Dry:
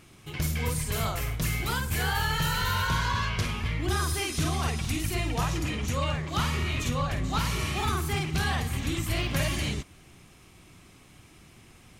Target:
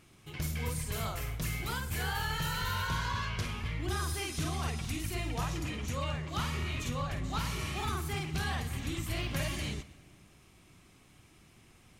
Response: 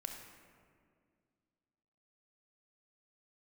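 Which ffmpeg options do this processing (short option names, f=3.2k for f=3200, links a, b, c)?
-filter_complex "[0:a]asplit=2[a][b];[1:a]atrim=start_sample=2205,adelay=127[c];[b][c]afir=irnorm=-1:irlink=0,volume=-16.5dB[d];[a][d]amix=inputs=2:normalize=0,volume=-6.5dB"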